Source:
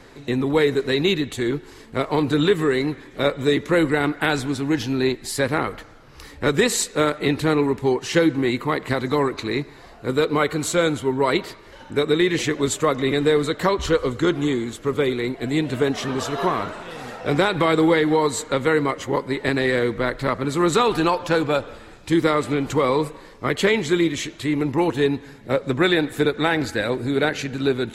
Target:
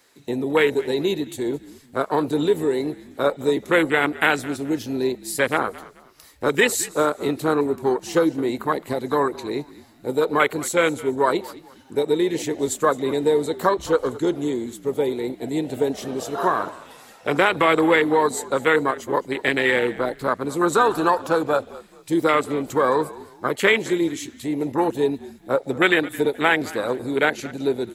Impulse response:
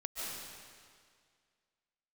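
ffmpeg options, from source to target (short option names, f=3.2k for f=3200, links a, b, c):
-filter_complex "[0:a]afwtdn=0.0708,aemphasis=mode=production:type=riaa,asplit=4[a][b][c][d];[b]adelay=215,afreqshift=-54,volume=-19dB[e];[c]adelay=430,afreqshift=-108,volume=-28.9dB[f];[d]adelay=645,afreqshift=-162,volume=-38.8dB[g];[a][e][f][g]amix=inputs=4:normalize=0,volume=3dB"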